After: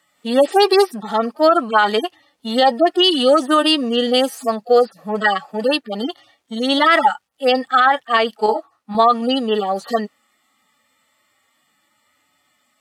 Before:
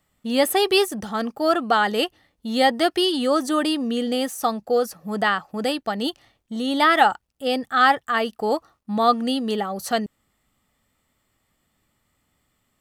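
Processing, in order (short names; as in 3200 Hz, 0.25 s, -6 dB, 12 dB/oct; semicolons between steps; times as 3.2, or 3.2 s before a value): median-filter separation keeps harmonic; weighting filter A; maximiser +15.5 dB; 8.46–8.95 detuned doubles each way 59 cents; gain -3.5 dB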